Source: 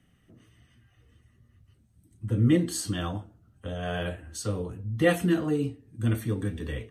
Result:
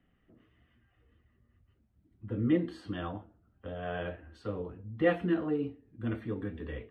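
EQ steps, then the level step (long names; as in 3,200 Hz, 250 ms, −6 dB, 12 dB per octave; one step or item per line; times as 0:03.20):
high-frequency loss of the air 420 metres
parametric band 120 Hz −10 dB 1.4 octaves
high-shelf EQ 9,300 Hz −7 dB
−1.5 dB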